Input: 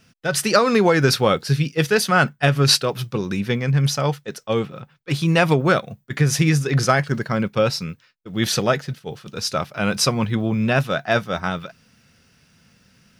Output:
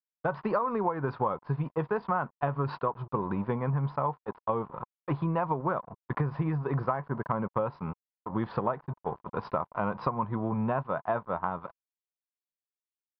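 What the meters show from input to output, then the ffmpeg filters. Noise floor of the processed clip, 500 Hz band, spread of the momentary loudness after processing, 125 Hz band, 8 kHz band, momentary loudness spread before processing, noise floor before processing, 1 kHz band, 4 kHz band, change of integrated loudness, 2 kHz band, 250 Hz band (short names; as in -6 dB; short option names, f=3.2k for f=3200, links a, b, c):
under -85 dBFS, -11.0 dB, 7 LU, -12.0 dB, under -40 dB, 11 LU, -58 dBFS, -6.0 dB, under -30 dB, -12.0 dB, -18.0 dB, -11.0 dB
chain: -af "aresample=11025,aeval=exprs='sgn(val(0))*max(abs(val(0))-0.0126,0)':c=same,aresample=44100,lowpass=f=1k:t=q:w=7,acompressor=threshold=-27dB:ratio=6"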